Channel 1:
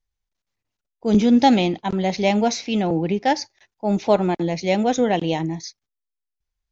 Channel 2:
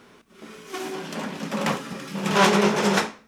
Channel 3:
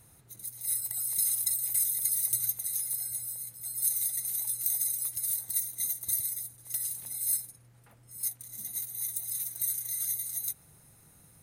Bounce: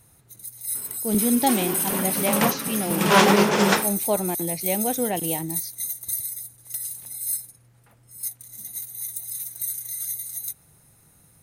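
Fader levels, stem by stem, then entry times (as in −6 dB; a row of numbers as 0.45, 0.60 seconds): −6.5, +2.0, +2.0 decibels; 0.00, 0.75, 0.00 seconds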